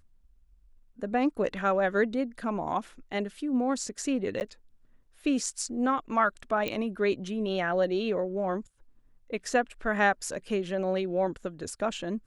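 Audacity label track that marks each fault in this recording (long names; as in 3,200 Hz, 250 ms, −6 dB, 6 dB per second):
4.400000	4.410000	drop-out 9.8 ms
6.680000	6.680000	click −17 dBFS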